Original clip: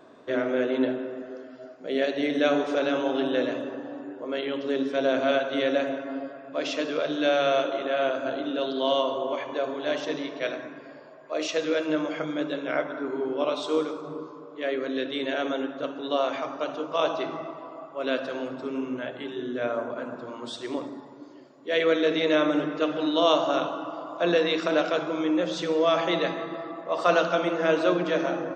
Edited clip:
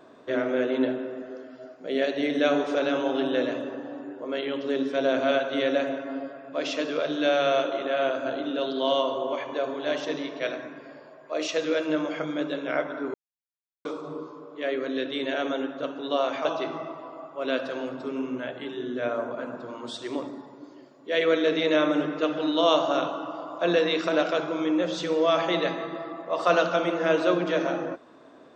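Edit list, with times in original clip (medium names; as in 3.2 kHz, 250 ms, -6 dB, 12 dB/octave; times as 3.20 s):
13.14–13.85 s: mute
16.45–17.04 s: delete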